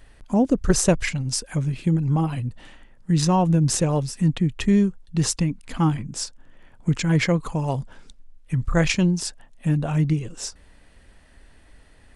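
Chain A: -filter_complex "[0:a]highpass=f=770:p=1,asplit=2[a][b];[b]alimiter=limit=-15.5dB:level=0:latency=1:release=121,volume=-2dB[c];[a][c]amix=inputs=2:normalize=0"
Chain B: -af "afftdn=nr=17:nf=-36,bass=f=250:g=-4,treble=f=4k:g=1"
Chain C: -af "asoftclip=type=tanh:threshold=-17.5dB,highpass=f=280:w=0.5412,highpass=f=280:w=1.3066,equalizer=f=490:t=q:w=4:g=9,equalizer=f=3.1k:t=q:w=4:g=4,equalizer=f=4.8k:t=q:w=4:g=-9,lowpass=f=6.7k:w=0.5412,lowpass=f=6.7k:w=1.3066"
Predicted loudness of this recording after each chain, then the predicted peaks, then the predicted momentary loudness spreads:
-25.0, -25.0, -30.0 LUFS; -4.5, -6.5, -10.5 dBFS; 11, 12, 13 LU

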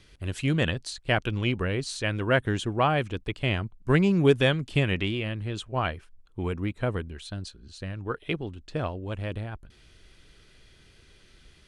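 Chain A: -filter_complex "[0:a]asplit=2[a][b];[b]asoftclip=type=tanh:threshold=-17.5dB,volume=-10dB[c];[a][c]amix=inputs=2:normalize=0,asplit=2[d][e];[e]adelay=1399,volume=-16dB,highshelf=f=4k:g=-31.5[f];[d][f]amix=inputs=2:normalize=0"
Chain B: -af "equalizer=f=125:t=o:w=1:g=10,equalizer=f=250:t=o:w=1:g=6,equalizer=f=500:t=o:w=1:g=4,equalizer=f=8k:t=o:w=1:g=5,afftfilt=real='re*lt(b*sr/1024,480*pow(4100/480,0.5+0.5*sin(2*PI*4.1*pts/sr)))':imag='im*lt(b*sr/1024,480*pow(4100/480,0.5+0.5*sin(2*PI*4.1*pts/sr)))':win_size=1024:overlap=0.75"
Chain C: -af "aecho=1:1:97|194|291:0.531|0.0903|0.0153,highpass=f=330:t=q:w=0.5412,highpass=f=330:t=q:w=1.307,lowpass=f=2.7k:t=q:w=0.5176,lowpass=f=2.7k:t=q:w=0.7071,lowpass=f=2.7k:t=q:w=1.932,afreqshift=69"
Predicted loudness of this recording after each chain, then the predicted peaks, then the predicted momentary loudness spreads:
-26.0, -21.0, -29.5 LUFS; -7.0, -1.5, -11.0 dBFS; 14, 16, 17 LU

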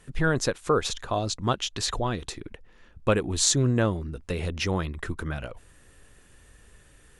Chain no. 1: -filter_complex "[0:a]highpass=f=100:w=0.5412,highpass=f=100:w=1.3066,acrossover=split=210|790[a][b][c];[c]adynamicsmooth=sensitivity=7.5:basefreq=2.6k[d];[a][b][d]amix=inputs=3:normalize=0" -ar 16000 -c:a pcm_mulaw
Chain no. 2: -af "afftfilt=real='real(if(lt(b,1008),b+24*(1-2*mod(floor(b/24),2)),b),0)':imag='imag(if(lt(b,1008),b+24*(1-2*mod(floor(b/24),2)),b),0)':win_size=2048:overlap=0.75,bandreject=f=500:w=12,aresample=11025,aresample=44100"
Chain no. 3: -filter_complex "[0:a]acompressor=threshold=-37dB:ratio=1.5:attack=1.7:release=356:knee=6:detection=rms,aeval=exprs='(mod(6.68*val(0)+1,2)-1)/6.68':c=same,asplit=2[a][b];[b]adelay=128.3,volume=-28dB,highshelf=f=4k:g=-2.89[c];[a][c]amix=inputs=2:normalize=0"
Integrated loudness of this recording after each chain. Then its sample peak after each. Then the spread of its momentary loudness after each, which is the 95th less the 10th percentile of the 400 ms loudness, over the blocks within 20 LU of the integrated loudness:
-28.0, -27.5, -34.0 LUFS; -7.5, -8.5, -17.5 dBFS; 12, 10, 12 LU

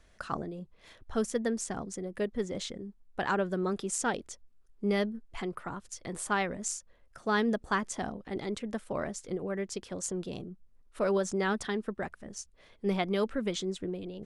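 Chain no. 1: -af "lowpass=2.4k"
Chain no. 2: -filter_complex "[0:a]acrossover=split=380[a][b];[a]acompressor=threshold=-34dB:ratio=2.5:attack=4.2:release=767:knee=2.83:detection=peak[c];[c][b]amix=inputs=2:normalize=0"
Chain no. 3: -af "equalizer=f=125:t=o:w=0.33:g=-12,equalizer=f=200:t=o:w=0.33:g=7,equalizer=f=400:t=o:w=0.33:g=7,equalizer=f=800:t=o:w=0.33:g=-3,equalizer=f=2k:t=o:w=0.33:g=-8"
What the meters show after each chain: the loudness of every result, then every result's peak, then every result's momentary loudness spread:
-34.0, -34.5, -30.0 LUFS; -17.0, -14.0, -13.5 dBFS; 13, 11, 14 LU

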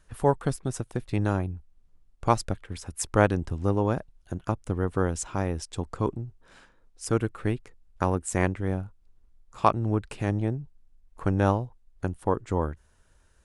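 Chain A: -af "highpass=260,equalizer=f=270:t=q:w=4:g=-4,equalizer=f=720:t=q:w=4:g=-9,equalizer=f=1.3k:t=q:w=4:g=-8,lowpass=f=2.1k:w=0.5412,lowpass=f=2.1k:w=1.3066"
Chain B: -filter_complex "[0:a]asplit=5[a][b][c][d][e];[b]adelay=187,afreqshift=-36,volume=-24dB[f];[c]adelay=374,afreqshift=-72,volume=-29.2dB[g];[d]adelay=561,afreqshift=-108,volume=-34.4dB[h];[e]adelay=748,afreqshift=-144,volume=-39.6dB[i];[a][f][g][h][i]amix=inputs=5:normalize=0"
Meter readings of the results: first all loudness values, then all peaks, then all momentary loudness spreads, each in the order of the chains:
-33.5, -28.5 LUFS; -8.5, -4.5 dBFS; 14, 12 LU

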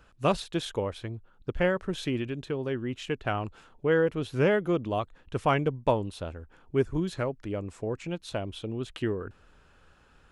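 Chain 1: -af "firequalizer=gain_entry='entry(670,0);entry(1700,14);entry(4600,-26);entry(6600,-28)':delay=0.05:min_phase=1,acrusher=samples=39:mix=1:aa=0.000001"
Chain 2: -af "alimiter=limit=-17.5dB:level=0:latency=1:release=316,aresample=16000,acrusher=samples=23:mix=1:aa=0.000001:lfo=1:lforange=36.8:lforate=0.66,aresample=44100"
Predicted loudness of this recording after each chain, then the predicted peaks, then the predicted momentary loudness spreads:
-28.0, -32.5 LUFS; -7.5, -15.5 dBFS; 14, 11 LU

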